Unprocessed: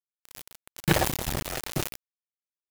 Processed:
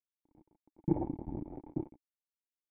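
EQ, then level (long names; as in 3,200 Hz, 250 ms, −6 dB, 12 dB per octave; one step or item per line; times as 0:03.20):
formant resonators in series u
low-shelf EQ 350 Hz +4 dB
0.0 dB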